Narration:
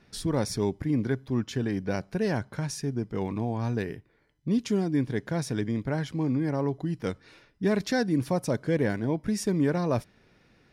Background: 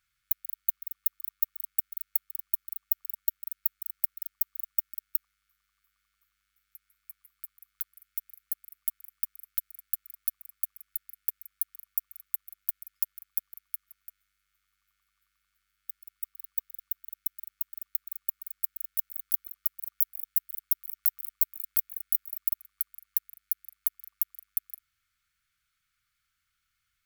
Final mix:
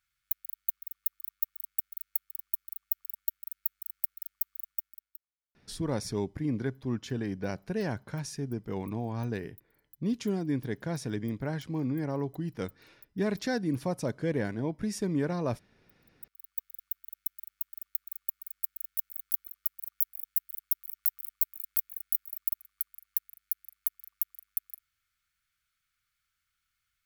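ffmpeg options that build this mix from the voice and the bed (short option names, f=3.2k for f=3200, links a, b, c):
-filter_complex "[0:a]adelay=5550,volume=-4.5dB[a];[1:a]volume=20dB,afade=t=out:st=4.56:d=0.63:silence=0.0749894,afade=t=in:st=16:d=0.72:silence=0.0668344[b];[a][b]amix=inputs=2:normalize=0"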